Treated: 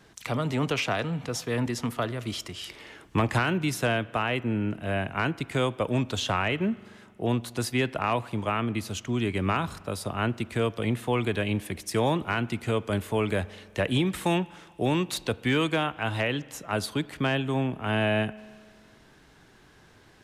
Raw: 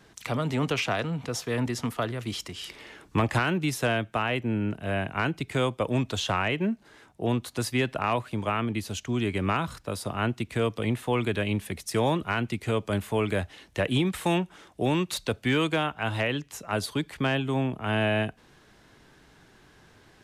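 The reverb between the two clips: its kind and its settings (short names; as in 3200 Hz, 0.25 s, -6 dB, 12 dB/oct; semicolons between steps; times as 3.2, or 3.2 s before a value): spring tank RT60 1.8 s, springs 42 ms, chirp 70 ms, DRR 19.5 dB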